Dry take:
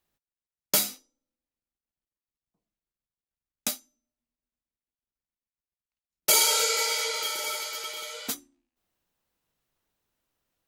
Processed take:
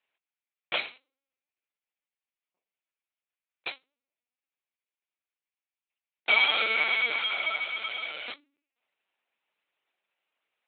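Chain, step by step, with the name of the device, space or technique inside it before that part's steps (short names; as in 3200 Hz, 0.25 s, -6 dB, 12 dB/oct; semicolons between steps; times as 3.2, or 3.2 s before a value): talking toy (LPC vocoder at 8 kHz pitch kept; HPF 490 Hz 12 dB/oct; bell 2400 Hz +9 dB 0.57 oct)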